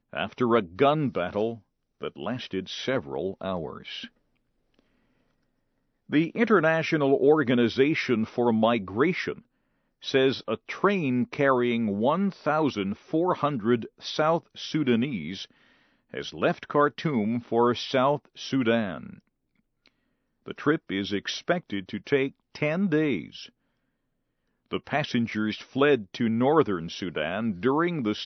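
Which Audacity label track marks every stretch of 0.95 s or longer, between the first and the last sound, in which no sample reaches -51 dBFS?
4.790000	6.090000	silence
23.490000	24.710000	silence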